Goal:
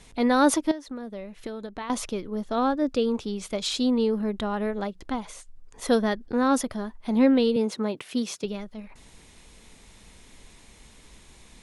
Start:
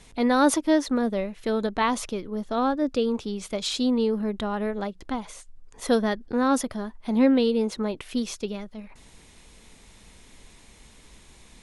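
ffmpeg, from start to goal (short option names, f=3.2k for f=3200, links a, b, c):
-filter_complex "[0:a]asettb=1/sr,asplit=3[a][b][c];[a]atrim=end=0.714[d];[b]atrim=start=0.71:end=1.9,asetpts=PTS-STARTPTS,afade=t=in:d=0.004:c=qsin,afade=t=out:st=1.186:d=0.004:c=qsin,acompressor=threshold=-32dB:ratio=16[e];[c]atrim=start=1.896[f];[d][e]acrossfade=d=0.004:c1=hsin:c2=qsin[g];[g][f]acrossfade=d=0.004:c1=qsin:c2=hsin,asettb=1/sr,asplit=3[h][i][j];[h]atrim=end=7.564[k];[i]atrim=start=7.56:end=8.44,asetpts=PTS-STARTPTS,afade=t=in:d=0.004:c=qsin,afade=t=out:st=0.876:d=0.004:c=qsin,highpass=f=120:w=0.5412,highpass=f=120:w=1.3066[l];[j]atrim=start=8.436[m];[k][l]acrossfade=d=0.004:c1=hsin:c2=qsin[n];[n][m]acrossfade=d=0.004:c1=qsin:c2=hsin"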